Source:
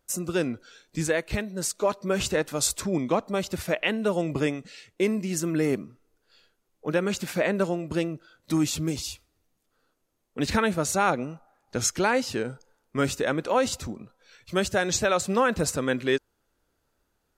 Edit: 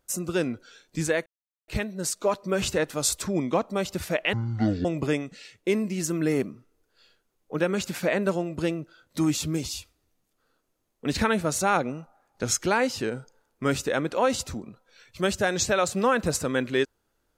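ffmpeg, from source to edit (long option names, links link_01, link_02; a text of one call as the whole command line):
ffmpeg -i in.wav -filter_complex "[0:a]asplit=4[link_01][link_02][link_03][link_04];[link_01]atrim=end=1.26,asetpts=PTS-STARTPTS,afade=type=out:start_time=1.256:duration=0.004:curve=hsin,apad=pad_dur=0.42[link_05];[link_02]atrim=start=1.26:end=3.914,asetpts=PTS-STARTPTS,afade=type=in:duration=0.004:curve=hsin[link_06];[link_03]atrim=start=3.91:end=4.18,asetpts=PTS-STARTPTS,asetrate=22932,aresample=44100,atrim=end_sample=22898,asetpts=PTS-STARTPTS[link_07];[link_04]atrim=start=4.176[link_08];[link_05][link_06]concat=n=2:v=0:a=1[link_09];[link_09][link_07]acrossfade=duration=0.004:curve1=hsin:curve2=hsin[link_10];[link_10][link_08]acrossfade=duration=0.004:curve1=hsin:curve2=hsin" out.wav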